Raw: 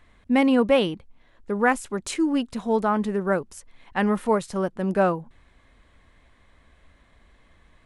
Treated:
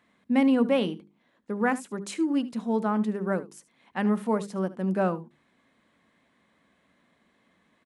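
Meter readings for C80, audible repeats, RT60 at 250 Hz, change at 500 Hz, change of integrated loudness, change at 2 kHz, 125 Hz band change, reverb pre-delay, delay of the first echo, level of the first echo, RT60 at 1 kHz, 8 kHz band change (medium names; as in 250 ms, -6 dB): no reverb, 1, no reverb, -5.5 dB, -3.5 dB, -6.5 dB, -2.0 dB, no reverb, 74 ms, -17.5 dB, no reverb, -6.5 dB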